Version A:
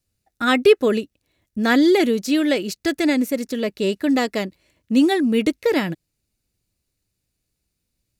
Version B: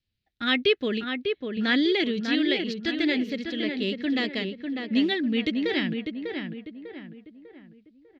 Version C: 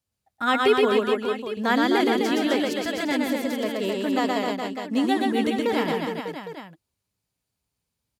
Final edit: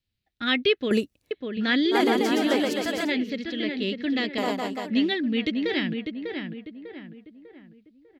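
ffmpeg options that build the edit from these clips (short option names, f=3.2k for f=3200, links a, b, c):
-filter_complex "[2:a]asplit=2[a][b];[1:a]asplit=4[c][d][e][f];[c]atrim=end=0.912[g];[0:a]atrim=start=0.908:end=1.312[h];[d]atrim=start=1.308:end=1.96[i];[a]atrim=start=1.9:end=3.12[j];[e]atrim=start=3.06:end=4.382[k];[b]atrim=start=4.378:end=4.902[l];[f]atrim=start=4.898[m];[g][h]acrossfade=d=0.004:c1=hsin:c2=hsin[n];[n][i]acrossfade=d=0.004:c1=hsin:c2=hsin[o];[o][j]acrossfade=d=0.06:c1=tri:c2=tri[p];[p][k]acrossfade=d=0.06:c1=tri:c2=tri[q];[q][l]acrossfade=d=0.004:c1=hsin:c2=hsin[r];[r][m]acrossfade=d=0.004:c1=hsin:c2=hsin"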